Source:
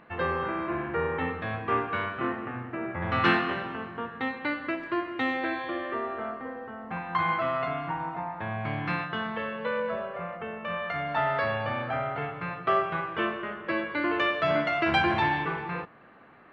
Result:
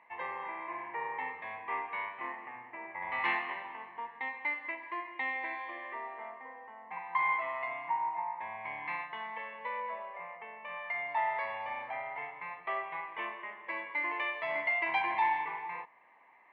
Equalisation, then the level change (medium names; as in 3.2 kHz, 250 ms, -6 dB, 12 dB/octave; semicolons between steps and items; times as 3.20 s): two resonant band-passes 1.4 kHz, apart 1.1 oct; +2.5 dB